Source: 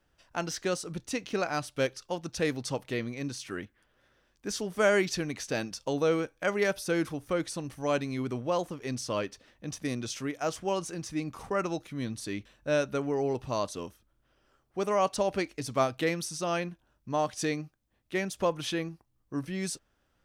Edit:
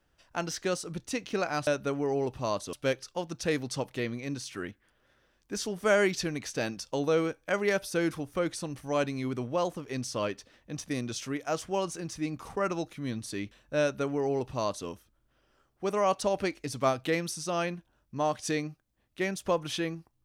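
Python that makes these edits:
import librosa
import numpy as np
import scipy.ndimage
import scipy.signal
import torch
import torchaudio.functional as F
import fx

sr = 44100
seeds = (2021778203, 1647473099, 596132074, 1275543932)

y = fx.edit(x, sr, fx.duplicate(start_s=12.75, length_s=1.06, to_s=1.67), tone=tone)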